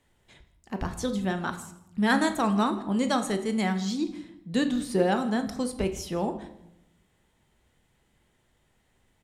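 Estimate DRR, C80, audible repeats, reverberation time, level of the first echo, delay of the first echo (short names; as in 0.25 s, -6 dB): 7.0 dB, 14.0 dB, 1, 0.80 s, -21.0 dB, 0.163 s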